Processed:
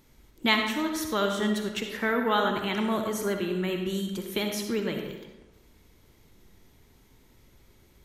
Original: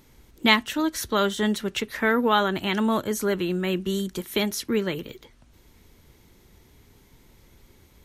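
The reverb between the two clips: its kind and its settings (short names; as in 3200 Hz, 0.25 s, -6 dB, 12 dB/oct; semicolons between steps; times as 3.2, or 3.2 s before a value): digital reverb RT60 1.1 s, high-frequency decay 0.65×, pre-delay 20 ms, DRR 3.5 dB; gain -5 dB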